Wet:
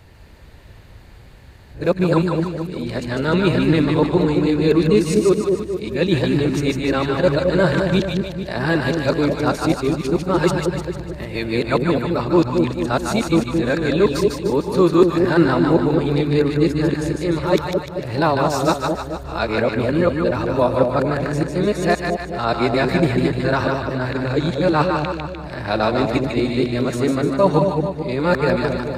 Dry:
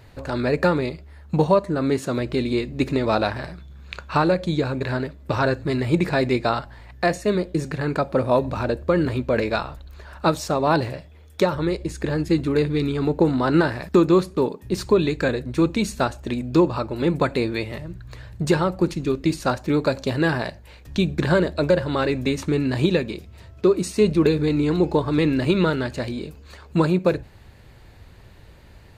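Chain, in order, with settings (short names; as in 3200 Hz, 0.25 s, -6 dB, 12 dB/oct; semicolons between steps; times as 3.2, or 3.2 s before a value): whole clip reversed; split-band echo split 740 Hz, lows 0.218 s, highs 0.15 s, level -3.5 dB; gain +1.5 dB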